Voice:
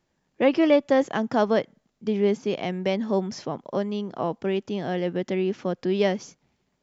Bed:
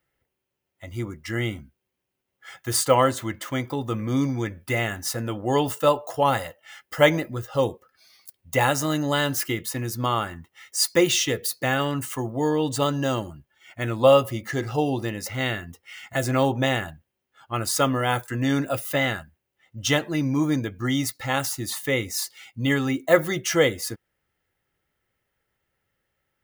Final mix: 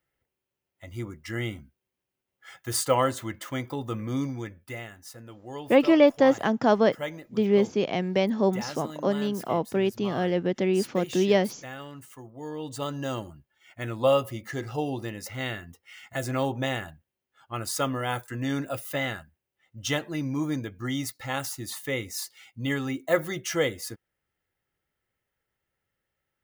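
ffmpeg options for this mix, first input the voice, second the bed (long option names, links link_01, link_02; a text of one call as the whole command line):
ffmpeg -i stem1.wav -i stem2.wav -filter_complex "[0:a]adelay=5300,volume=1dB[link_01];[1:a]volume=6dB,afade=type=out:start_time=4.02:duration=0.9:silence=0.251189,afade=type=in:start_time=12.36:duration=0.83:silence=0.298538[link_02];[link_01][link_02]amix=inputs=2:normalize=0" out.wav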